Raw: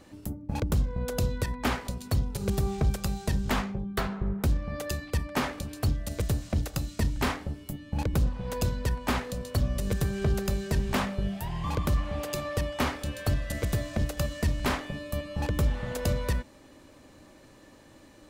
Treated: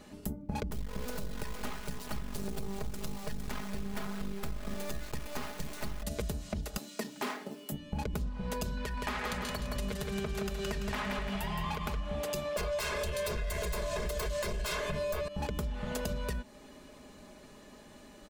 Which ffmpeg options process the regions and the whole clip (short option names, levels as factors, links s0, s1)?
-filter_complex "[0:a]asettb=1/sr,asplit=3[s0][s1][s2];[s0]atrim=end=0.704[s3];[s1]atrim=start=0.7:end=6.03,asetpts=PTS-STARTPTS,afade=t=in:d=0.004:c=qsin,afade=t=out:st=5.326:d=0.004:c=qsin,acrusher=bits=4:dc=4:mix=0:aa=0.000001,aecho=1:1:458:0.447,atrim=end_sample=235053[s4];[s2]atrim=start=6.026[s5];[s3][s4]acrossfade=d=0.004:c1=hsin:c2=qsin[s6];[s6][s5]acrossfade=d=0.004:c1=qsin:c2=hsin,asettb=1/sr,asplit=3[s7][s8][s9];[s7]atrim=end=6.774[s10];[s8]atrim=start=6.77:end=7.72,asetpts=PTS-STARTPTS,afade=t=in:d=0.004:c=qsin,afade=t=out:st=0.946:d=0.004:c=qsin,highpass=f=230:w=0.5412,highpass=f=230:w=1.3066,acrusher=bits=5:mode=log:mix=0:aa=0.000001[s11];[s9]atrim=start=7.716[s12];[s10][s11]acrossfade=d=0.004:c1=hsin:c2=qsin[s13];[s13][s12]acrossfade=d=0.004:c1=qsin:c2=hsin,asettb=1/sr,asplit=3[s14][s15][s16];[s14]atrim=end=8.774[s17];[s15]atrim=start=8.77:end=11.97,asetpts=PTS-STARTPTS,afade=t=in:d=0.004:c=qsin,afade=t=out:st=3.196:d=0.004:c=qsin,acompressor=threshold=0.0282:ratio=3:attack=3.2:release=140:knee=1:detection=peak,equalizer=f=1900:w=0.42:g=8.5,aecho=1:1:169|338|507|676|845:0.531|0.234|0.103|0.0452|0.0199,atrim=end_sample=141120[s18];[s16]atrim=start=11.966[s19];[s17][s18]acrossfade=d=0.004:c1=hsin:c2=qsin[s20];[s20][s19]acrossfade=d=0.004:c1=qsin:c2=hsin,asettb=1/sr,asplit=3[s21][s22][s23];[s21]atrim=end=12.564[s24];[s22]atrim=start=12.56:end=15.28,asetpts=PTS-STARTPTS,afade=t=in:d=0.004:c=qsin,afade=t=out:st=2.716:d=0.004:c=qsin,aeval=exprs='0.141*sin(PI/2*4.47*val(0)/0.141)':c=same,aecho=1:1:1.9:0.82,atrim=end_sample=119952[s25];[s23]atrim=start=15.276[s26];[s24][s25]acrossfade=d=0.004:c1=hsin:c2=qsin[s27];[s27][s26]acrossfade=d=0.004:c1=qsin:c2=hsin,aecho=1:1:4.8:0.63,alimiter=limit=0.0891:level=0:latency=1:release=300,acompressor=threshold=0.0282:ratio=6"